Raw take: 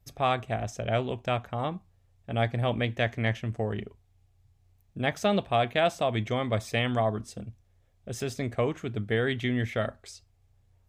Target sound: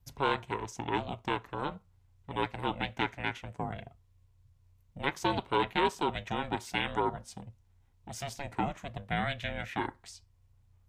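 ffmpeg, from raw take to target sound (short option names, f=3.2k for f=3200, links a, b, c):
-filter_complex "[0:a]acrossover=split=290[a][b];[a]acompressor=threshold=-44dB:ratio=6[c];[b]aeval=exprs='val(0)*sin(2*PI*280*n/s)':c=same[d];[c][d]amix=inputs=2:normalize=0"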